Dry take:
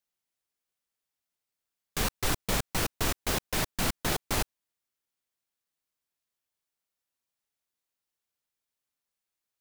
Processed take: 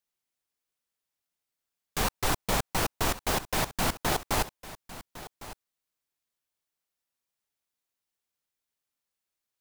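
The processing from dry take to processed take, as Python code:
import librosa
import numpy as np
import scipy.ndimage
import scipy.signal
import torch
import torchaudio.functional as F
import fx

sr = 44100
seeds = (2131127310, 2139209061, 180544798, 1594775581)

p1 = fx.dynamic_eq(x, sr, hz=850.0, q=1.2, threshold_db=-46.0, ratio=4.0, max_db=6)
y = p1 + fx.echo_single(p1, sr, ms=1106, db=-16.0, dry=0)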